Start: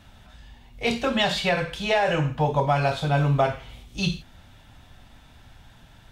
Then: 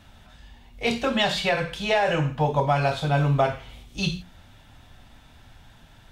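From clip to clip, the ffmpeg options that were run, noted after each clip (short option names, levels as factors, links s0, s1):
-af "bandreject=f=60:t=h:w=6,bandreject=f=120:t=h:w=6,bandreject=f=180:t=h:w=6"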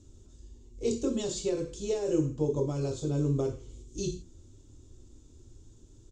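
-af "firequalizer=gain_entry='entry(110,0);entry(170,-11);entry(350,10);entry(710,-24);entry(1100,-17);entry(1700,-28);entry(7100,8);entry(11000,-24)':delay=0.05:min_phase=1,volume=0.841"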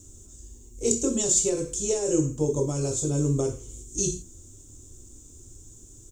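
-af "aexciter=amount=6.1:drive=7.6:freq=6300,volume=1.5"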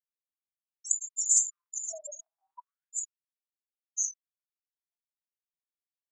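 -af "afftfilt=real='re*gte(hypot(re,im),0.1)':imag='im*gte(hypot(re,im),0.1)':win_size=1024:overlap=0.75,afftfilt=real='re*gte(b*sr/1024,600*pow(3700/600,0.5+0.5*sin(2*PI*0.35*pts/sr)))':imag='im*gte(b*sr/1024,600*pow(3700/600,0.5+0.5*sin(2*PI*0.35*pts/sr)))':win_size=1024:overlap=0.75"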